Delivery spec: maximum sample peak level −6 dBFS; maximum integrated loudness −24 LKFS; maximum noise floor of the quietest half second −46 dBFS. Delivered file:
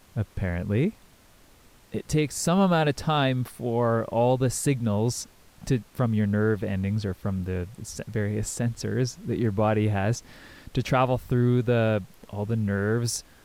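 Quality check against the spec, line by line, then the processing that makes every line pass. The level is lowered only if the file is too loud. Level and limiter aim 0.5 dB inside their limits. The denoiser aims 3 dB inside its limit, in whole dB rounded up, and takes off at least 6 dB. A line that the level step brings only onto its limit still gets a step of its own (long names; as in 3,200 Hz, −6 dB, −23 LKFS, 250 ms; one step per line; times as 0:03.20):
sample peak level −11.0 dBFS: in spec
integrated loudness −26.0 LKFS: in spec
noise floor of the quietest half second −55 dBFS: in spec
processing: no processing needed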